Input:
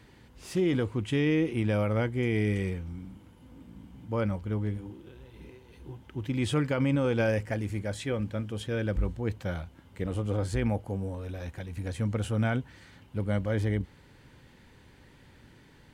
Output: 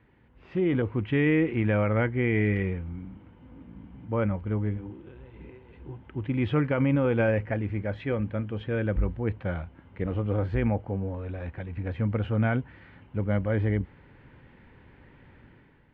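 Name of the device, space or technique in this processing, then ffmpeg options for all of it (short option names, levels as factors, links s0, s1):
action camera in a waterproof case: -filter_complex "[0:a]asettb=1/sr,asplit=3[s0][s1][s2];[s0]atrim=end=0.824[s3];[s1]atrim=start=0.82:end=2.63,asetpts=PTS-STARTPTS,afade=t=in:d=0.004:c=qsin,afade=t=out:st=1.806:d=0.004:c=qsin,adynamicequalizer=threshold=0.00501:dfrequency=1800:dqfactor=1.7:tfrequency=1800:tqfactor=1.7:attack=5:release=100:ratio=0.375:range=2.5:mode=boostabove:tftype=bell[s4];[s2]atrim=start=2.626[s5];[s3][s4]acrossfade=d=0.004:c1=hsin:c2=qsin[s6];[s6][s5]acrossfade=d=0.004:c1=qsin:c2=hsin,lowpass=f=2600:w=0.5412,lowpass=f=2600:w=1.3066,dynaudnorm=f=210:g=5:m=2.66,volume=0.501" -ar 44100 -c:a aac -b:a 128k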